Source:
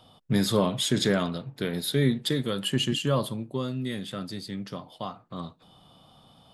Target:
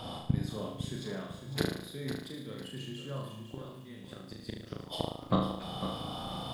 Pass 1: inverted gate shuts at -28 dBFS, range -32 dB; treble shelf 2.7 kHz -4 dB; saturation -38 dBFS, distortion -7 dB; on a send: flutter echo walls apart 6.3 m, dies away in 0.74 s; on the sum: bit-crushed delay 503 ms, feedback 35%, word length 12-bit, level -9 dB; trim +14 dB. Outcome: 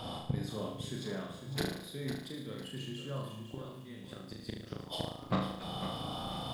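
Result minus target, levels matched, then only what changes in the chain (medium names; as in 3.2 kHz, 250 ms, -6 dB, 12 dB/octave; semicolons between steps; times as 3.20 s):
saturation: distortion +10 dB
change: saturation -28.5 dBFS, distortion -17 dB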